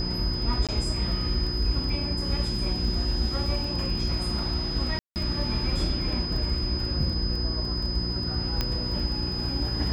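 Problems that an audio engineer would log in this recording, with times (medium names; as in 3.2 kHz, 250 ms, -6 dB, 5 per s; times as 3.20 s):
crackle 18 per s -33 dBFS
hum 60 Hz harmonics 6 -33 dBFS
whine 5 kHz -31 dBFS
0.67–0.69 s: dropout 17 ms
4.99–5.16 s: dropout 169 ms
8.61 s: pop -11 dBFS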